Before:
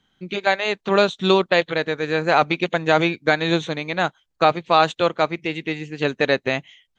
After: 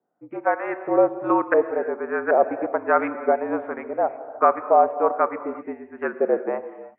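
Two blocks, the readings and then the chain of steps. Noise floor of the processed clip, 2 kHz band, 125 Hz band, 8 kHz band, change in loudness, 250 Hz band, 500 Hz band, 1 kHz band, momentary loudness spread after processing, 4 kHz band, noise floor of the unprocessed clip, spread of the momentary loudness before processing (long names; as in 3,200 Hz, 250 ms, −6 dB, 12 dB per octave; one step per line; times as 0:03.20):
−50 dBFS, −8.0 dB, below −20 dB, can't be measured, −2.0 dB, −3.5 dB, −0.5 dB, −0.5 dB, 12 LU, below −40 dB, −73 dBFS, 8 LU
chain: auto-filter low-pass saw up 1.3 Hz 600–1,600 Hz
single-sideband voice off tune −53 Hz 320–2,300 Hz
reverb whose tail is shaped and stops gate 380 ms flat, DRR 11 dB
tape wow and flutter 26 cents
level −4.5 dB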